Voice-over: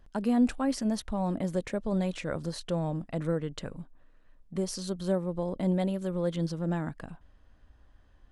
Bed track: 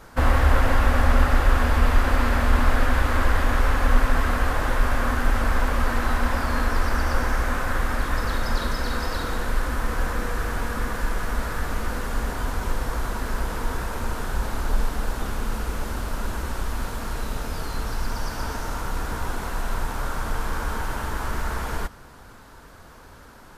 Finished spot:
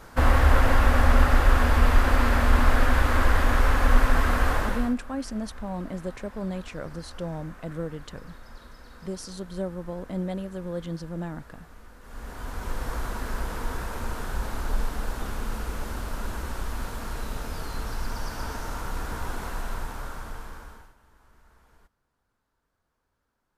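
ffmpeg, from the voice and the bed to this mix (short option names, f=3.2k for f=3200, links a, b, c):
-filter_complex "[0:a]adelay=4500,volume=-3dB[a];[1:a]volume=17.5dB,afade=t=out:st=4.54:d=0.41:silence=0.0841395,afade=t=in:st=12:d=0.9:silence=0.125893,afade=t=out:st=19.47:d=1.47:silence=0.0421697[b];[a][b]amix=inputs=2:normalize=0"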